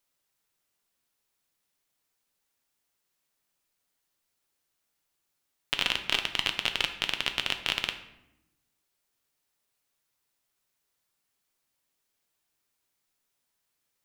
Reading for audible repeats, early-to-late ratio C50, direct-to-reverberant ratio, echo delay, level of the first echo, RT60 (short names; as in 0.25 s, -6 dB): none, 10.0 dB, 6.0 dB, none, none, 0.85 s